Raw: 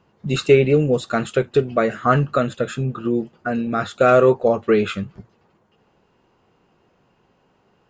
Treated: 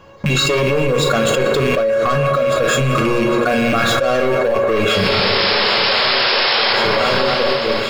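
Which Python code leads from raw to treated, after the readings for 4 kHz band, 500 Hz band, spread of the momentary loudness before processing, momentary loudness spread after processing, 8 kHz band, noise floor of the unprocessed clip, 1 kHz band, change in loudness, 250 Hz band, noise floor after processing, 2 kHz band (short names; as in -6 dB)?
+20.0 dB, +3.5 dB, 10 LU, 3 LU, n/a, -62 dBFS, +6.5 dB, +4.0 dB, +2.5 dB, -19 dBFS, +12.0 dB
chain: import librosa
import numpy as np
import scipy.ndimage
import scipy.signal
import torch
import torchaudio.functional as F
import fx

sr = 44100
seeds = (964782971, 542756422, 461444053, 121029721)

p1 = fx.rattle_buzz(x, sr, strikes_db=-30.0, level_db=-24.0)
p2 = fx.peak_eq(p1, sr, hz=200.0, db=-7.0, octaves=0.22)
p3 = fx.leveller(p2, sr, passes=3)
p4 = fx.comb_fb(p3, sr, f0_hz=550.0, decay_s=0.15, harmonics='all', damping=0.0, mix_pct=90)
p5 = fx.spec_paint(p4, sr, seeds[0], shape='noise', start_s=4.9, length_s=1.83, low_hz=340.0, high_hz=5400.0, level_db=-38.0)
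p6 = fx.hum_notches(p5, sr, base_hz=60, count=7)
p7 = fx.doubler(p6, sr, ms=36.0, db=-11)
p8 = p7 + fx.echo_swing(p7, sr, ms=1074, ratio=3, feedback_pct=54, wet_db=-23.5, dry=0)
p9 = fx.rev_fdn(p8, sr, rt60_s=2.7, lf_ratio=0.8, hf_ratio=0.45, size_ms=95.0, drr_db=6.5)
p10 = fx.env_flatten(p9, sr, amount_pct=100)
y = p10 * librosa.db_to_amplitude(-3.5)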